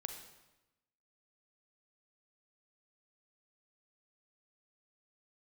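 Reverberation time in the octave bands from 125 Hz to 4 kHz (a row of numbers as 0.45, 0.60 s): 1.1, 1.1, 1.0, 1.0, 0.95, 0.85 s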